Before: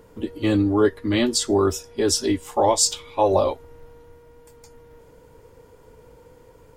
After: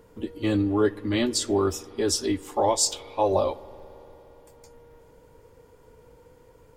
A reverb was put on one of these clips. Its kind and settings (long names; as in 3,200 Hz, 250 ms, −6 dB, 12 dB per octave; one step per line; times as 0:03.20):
spring reverb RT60 3.9 s, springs 57 ms, chirp 50 ms, DRR 18.5 dB
level −4 dB